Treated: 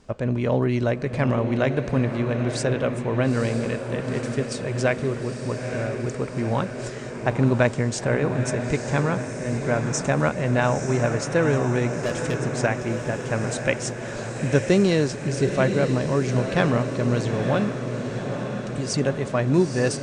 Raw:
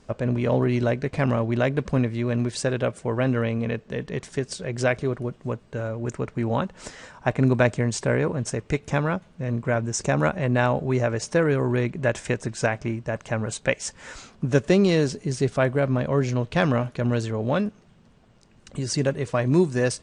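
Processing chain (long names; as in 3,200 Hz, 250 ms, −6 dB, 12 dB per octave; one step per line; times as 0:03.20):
0:12.02–0:12.61: gain into a clipping stage and back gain 23 dB
feedback delay with all-pass diffusion 913 ms, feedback 64%, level −7 dB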